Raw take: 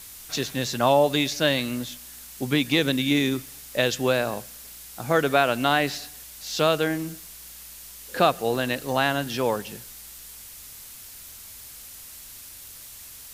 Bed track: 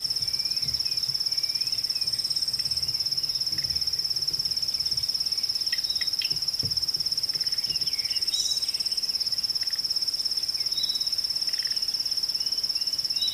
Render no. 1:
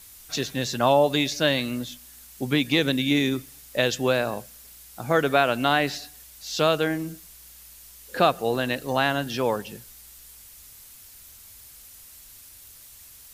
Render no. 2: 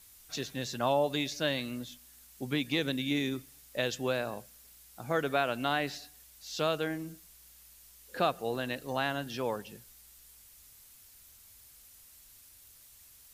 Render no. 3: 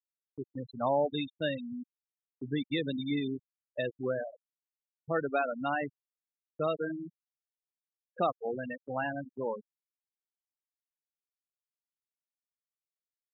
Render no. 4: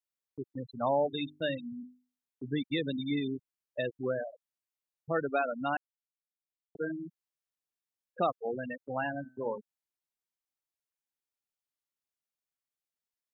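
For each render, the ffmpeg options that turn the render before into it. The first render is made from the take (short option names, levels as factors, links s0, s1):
-af "afftdn=nr=6:nf=-43"
-af "volume=0.355"
-af "afftfilt=real='re*gte(hypot(re,im),0.0708)':imag='im*gte(hypot(re,im),0.0708)':win_size=1024:overlap=0.75,agate=range=0.00501:threshold=0.00316:ratio=16:detection=peak"
-filter_complex "[0:a]asettb=1/sr,asplit=3[s0][s1][s2];[s0]atrim=end=0.854[s3];[s1]atrim=start=0.85:end=2.44,asetpts=PTS-STARTPTS,afade=t=in:d=0.004:c=qsin,afade=t=out:st=1.586:d=0.004:c=qsin,bandreject=f=50:t=h:w=6,bandreject=f=100:t=h:w=6,bandreject=f=150:t=h:w=6,bandreject=f=200:t=h:w=6,bandreject=f=250:t=h:w=6,bandreject=f=300:t=h:w=6,bandreject=f=350:t=h:w=6,bandreject=f=400:t=h:w=6[s4];[s2]atrim=start=2.436[s5];[s3][s4]acrossfade=d=0.004:c1=hsin:c2=qsin[s6];[s6][s5]acrossfade=d=0.004:c1=qsin:c2=hsin,asettb=1/sr,asplit=3[s7][s8][s9];[s7]atrim=end=9.114[s10];[s8]atrim=start=9.11:end=9.58,asetpts=PTS-STARTPTS,afade=t=in:d=0.004:c=qsin,afade=t=out:st=0.466:d=0.004:c=qsin,bandreject=f=127.9:t=h:w=4,bandreject=f=255.8:t=h:w=4,bandreject=f=383.7:t=h:w=4,bandreject=f=511.6:t=h:w=4,bandreject=f=639.5:t=h:w=4,bandreject=f=767.4:t=h:w=4,bandreject=f=895.3:t=h:w=4,bandreject=f=1023.2:t=h:w=4,bandreject=f=1151.1:t=h:w=4,bandreject=f=1279:t=h:w=4,bandreject=f=1406.9:t=h:w=4,bandreject=f=1534.8:t=h:w=4,bandreject=f=1662.7:t=h:w=4,bandreject=f=1790.6:t=h:w=4,bandreject=f=1918.5:t=h:w=4,bandreject=f=2046.4:t=h:w=4,bandreject=f=2174.3:t=h:w=4,bandreject=f=2302.2:t=h:w=4,bandreject=f=2430.1:t=h:w=4,bandreject=f=2558:t=h:w=4,bandreject=f=2685.9:t=h:w=4,bandreject=f=2813.8:t=h:w=4,bandreject=f=2941.7:t=h:w=4,bandreject=f=3069.6:t=h:w=4,bandreject=f=3197.5:t=h:w=4,bandreject=f=3325.4:t=h:w=4,bandreject=f=3453.3:t=h:w=4,bandreject=f=3581.2:t=h:w=4[s11];[s9]atrim=start=9.576[s12];[s10][s11]acrossfade=d=0.004:c1=hsin:c2=qsin[s13];[s13][s12]acrossfade=d=0.004:c1=qsin:c2=hsin,asplit=3[s14][s15][s16];[s14]atrim=end=5.77,asetpts=PTS-STARTPTS,afade=t=out:st=5.766:d=0.004:c=hsin[s17];[s15]atrim=start=5.77:end=6.75,asetpts=PTS-STARTPTS,volume=0[s18];[s16]atrim=start=6.75,asetpts=PTS-STARTPTS,afade=t=in:d=0.004:c=hsin[s19];[s17][s18][s19]concat=n=3:v=0:a=1"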